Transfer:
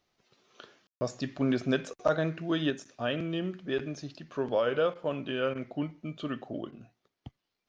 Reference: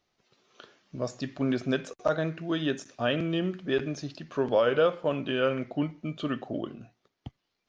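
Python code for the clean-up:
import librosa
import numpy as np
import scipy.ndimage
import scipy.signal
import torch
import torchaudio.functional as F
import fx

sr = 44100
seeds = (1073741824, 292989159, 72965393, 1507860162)

y = fx.fix_ambience(x, sr, seeds[0], print_start_s=7.14, print_end_s=7.64, start_s=0.87, end_s=1.01)
y = fx.fix_interpolate(y, sr, at_s=(4.94, 5.54, 6.71), length_ms=11.0)
y = fx.fix_level(y, sr, at_s=2.7, step_db=4.0)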